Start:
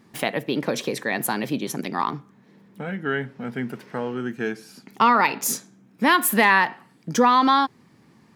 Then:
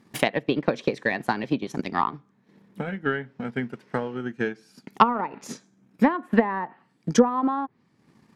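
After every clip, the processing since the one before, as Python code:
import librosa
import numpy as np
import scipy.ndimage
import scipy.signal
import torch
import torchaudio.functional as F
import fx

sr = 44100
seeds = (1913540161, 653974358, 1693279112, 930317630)

y = fx.env_lowpass_down(x, sr, base_hz=840.0, full_db=-14.5)
y = fx.transient(y, sr, attack_db=9, sustain_db=-6)
y = F.gain(torch.from_numpy(y), -4.0).numpy()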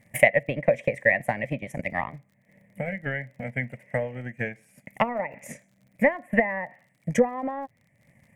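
y = fx.curve_eq(x, sr, hz=(110.0, 400.0, 580.0, 890.0, 1400.0, 2000.0, 4200.0, 8400.0), db=(0, -21, 4, -14, -22, 6, -30, -2))
y = fx.dmg_crackle(y, sr, seeds[0], per_s=42.0, level_db=-56.0)
y = F.gain(torch.from_numpy(y), 6.0).numpy()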